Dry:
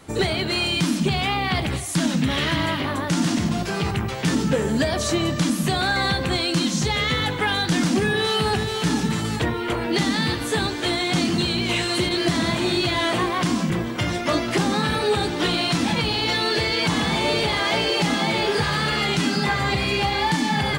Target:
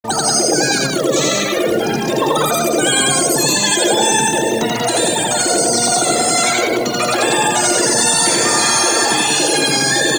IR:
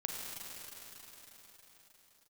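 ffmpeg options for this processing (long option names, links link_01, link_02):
-filter_complex "[0:a]afftfilt=real='re*gte(hypot(re,im),0.0794)':imag='im*gte(hypot(re,im),0.0794)':win_size=1024:overlap=0.75,lowpass=5700,highshelf=frequency=3400:gain=11,asetrate=89964,aresample=44100,acrusher=bits=5:mix=0:aa=0.5,asplit=2[link_01][link_02];[link_02]aecho=0:1:84.55|186.6:0.891|0.708[link_03];[link_01][link_03]amix=inputs=2:normalize=0,volume=2.5dB"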